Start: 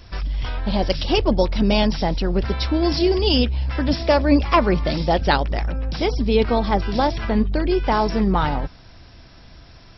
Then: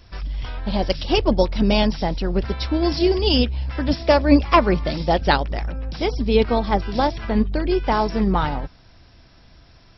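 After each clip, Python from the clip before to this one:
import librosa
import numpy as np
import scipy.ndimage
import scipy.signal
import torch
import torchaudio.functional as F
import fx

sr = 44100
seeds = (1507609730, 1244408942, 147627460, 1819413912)

y = fx.upward_expand(x, sr, threshold_db=-26.0, expansion=1.5)
y = F.gain(torch.from_numpy(y), 2.5).numpy()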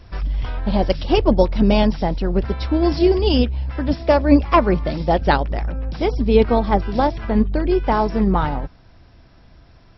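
y = fx.high_shelf(x, sr, hz=2700.0, db=-10.5)
y = fx.rider(y, sr, range_db=4, speed_s=2.0)
y = F.gain(torch.from_numpy(y), 2.0).numpy()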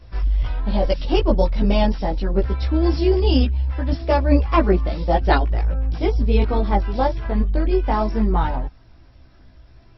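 y = fx.chorus_voices(x, sr, voices=6, hz=0.39, base_ms=17, depth_ms=2.0, mix_pct=50)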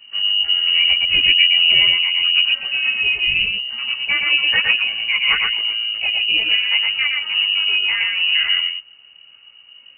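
y = x + 10.0 ** (-3.0 / 20.0) * np.pad(x, (int(116 * sr / 1000.0), 0))[:len(x)]
y = fx.freq_invert(y, sr, carrier_hz=2900)
y = F.gain(torch.from_numpy(y), -2.0).numpy()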